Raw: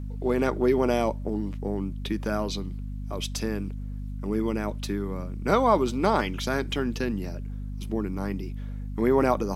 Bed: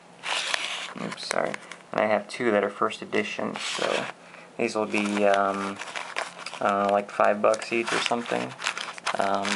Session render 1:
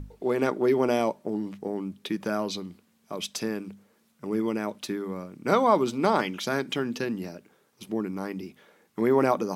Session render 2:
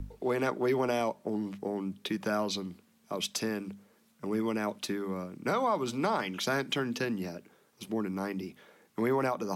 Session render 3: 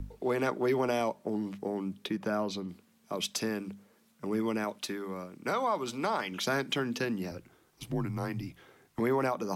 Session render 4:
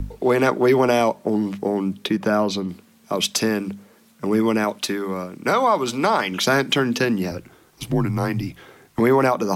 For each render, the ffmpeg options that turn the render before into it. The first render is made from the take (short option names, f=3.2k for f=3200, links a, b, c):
-af "bandreject=f=50:t=h:w=6,bandreject=f=100:t=h:w=6,bandreject=f=150:t=h:w=6,bandreject=f=200:t=h:w=6,bandreject=f=250:t=h:w=6"
-filter_complex "[0:a]acrossover=split=230|460|4000[a][b][c][d];[b]acompressor=threshold=-39dB:ratio=6[e];[a][e][c][d]amix=inputs=4:normalize=0,alimiter=limit=-19.5dB:level=0:latency=1:release=213"
-filter_complex "[0:a]asettb=1/sr,asplit=3[a][b][c];[a]atrim=end=2.064[d];[b]atrim=start=2.06:end=2.69,asetpts=PTS-STARTPTS,afade=t=in:d=0.004:c=qsin,afade=t=out:st=0.626:d=0.004:c=qsin,highshelf=f=2k:g=-7.5[e];[c]atrim=start=2.686[f];[d][e]acrossfade=d=0.004:c1=hsin:c2=qsin[g];[g][f]acrossfade=d=0.004:c1=qsin:c2=hsin,asettb=1/sr,asplit=3[h][i][j];[h]atrim=end=4.644[k];[i]atrim=start=4.64:end=6.32,asetpts=PTS-STARTPTS,afade=t=in:d=0.004:c=qsin,afade=t=out:st=1.676:d=0.004:c=qsin,lowshelf=f=340:g=-6.5[l];[j]atrim=start=6.316[m];[k][l]acrossfade=d=0.004:c1=hsin:c2=qsin[n];[n][m]acrossfade=d=0.004:c1=qsin:c2=hsin,asettb=1/sr,asplit=3[o][p][q];[o]atrim=end=7.314[r];[p]atrim=start=7.31:end=9,asetpts=PTS-STARTPTS,afade=t=in:d=0.004:c=qsin,afade=t=out:st=1.686:d=0.004:c=qsin,afreqshift=-75[s];[q]atrim=start=8.996[t];[r][s]acrossfade=d=0.004:c1=hsin:c2=qsin[u];[u][t]acrossfade=d=0.004:c1=qsin:c2=hsin"
-af "volume=12dB"